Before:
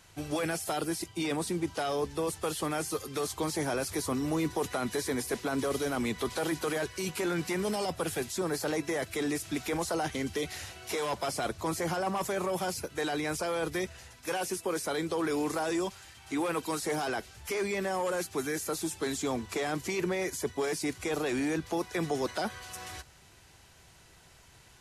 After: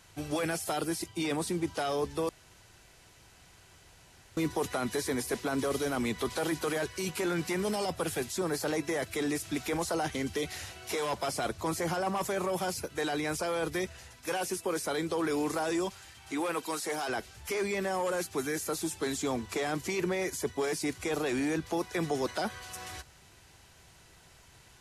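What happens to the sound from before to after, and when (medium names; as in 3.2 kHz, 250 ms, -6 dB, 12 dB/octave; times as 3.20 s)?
2.29–4.37 s: room tone
16.31–17.08 s: high-pass 220 Hz -> 560 Hz 6 dB/octave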